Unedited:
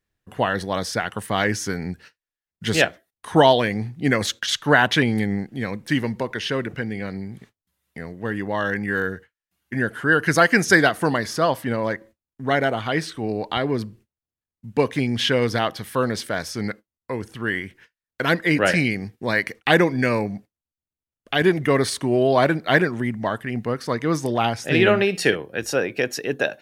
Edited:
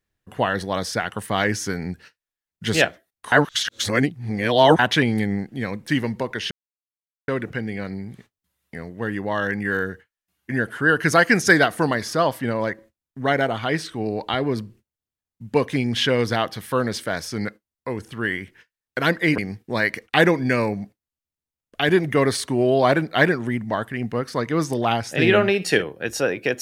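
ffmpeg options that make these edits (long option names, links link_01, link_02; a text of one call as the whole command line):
ffmpeg -i in.wav -filter_complex "[0:a]asplit=5[link_01][link_02][link_03][link_04][link_05];[link_01]atrim=end=3.322[link_06];[link_02]atrim=start=3.318:end=4.792,asetpts=PTS-STARTPTS,areverse[link_07];[link_03]atrim=start=4.788:end=6.51,asetpts=PTS-STARTPTS,afade=type=out:start_time=1.718:duration=0.004:curve=hsin,apad=pad_dur=0.77[link_08];[link_04]atrim=start=6.51:end=18.612,asetpts=PTS-STARTPTS,afade=type=in:duration=0.004:curve=hsin[link_09];[link_05]atrim=start=18.908[link_10];[link_06][link_07]acrossfade=duration=0.004:curve1=hsin:curve2=hsin[link_11];[link_08][link_09]concat=n=2:v=0:a=1[link_12];[link_11][link_12]acrossfade=duration=0.004:curve1=hsin:curve2=hsin[link_13];[link_13][link_10]acrossfade=duration=0.004:curve1=hsin:curve2=hsin" out.wav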